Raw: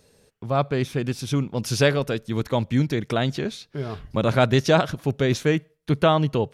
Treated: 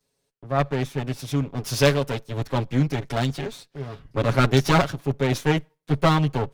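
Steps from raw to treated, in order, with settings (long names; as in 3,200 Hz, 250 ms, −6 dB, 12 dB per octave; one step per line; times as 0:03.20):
lower of the sound and its delayed copy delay 7.2 ms
multiband upward and downward expander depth 40%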